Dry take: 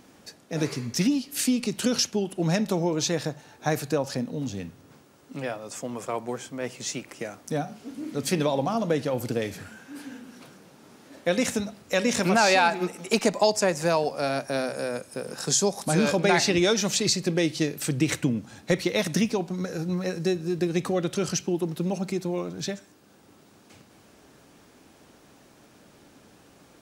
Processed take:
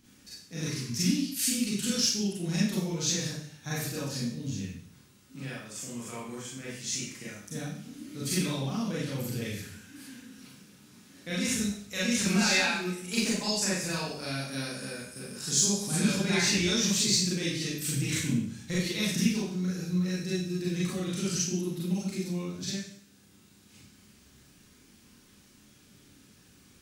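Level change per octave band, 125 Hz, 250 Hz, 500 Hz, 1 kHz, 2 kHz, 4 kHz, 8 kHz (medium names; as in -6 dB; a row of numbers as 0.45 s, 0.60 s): -1.5 dB, -3.0 dB, -11.5 dB, -12.5 dB, -3.5 dB, -0.5 dB, +1.0 dB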